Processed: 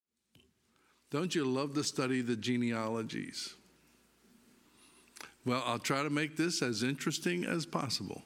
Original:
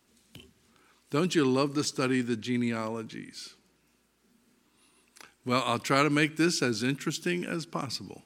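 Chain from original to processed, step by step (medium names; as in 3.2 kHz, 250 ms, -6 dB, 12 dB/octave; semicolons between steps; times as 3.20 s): fade-in on the opening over 2.48 s; compression 6:1, threshold -31 dBFS, peak gain reduction 13 dB; trim +2 dB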